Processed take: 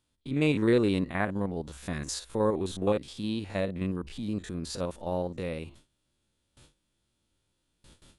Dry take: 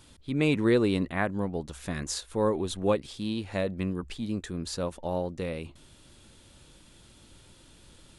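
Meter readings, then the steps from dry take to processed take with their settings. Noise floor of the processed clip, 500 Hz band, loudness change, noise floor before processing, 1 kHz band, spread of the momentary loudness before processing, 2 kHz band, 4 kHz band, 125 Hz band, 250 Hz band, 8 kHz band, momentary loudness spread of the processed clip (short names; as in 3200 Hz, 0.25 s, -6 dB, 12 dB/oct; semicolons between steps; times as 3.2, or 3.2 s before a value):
-78 dBFS, -0.5 dB, -0.5 dB, -56 dBFS, -1.0 dB, 11 LU, -1.5 dB, -2.0 dB, -0.5 dB, -0.5 dB, -2.0 dB, 12 LU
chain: stepped spectrum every 50 ms; gate with hold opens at -44 dBFS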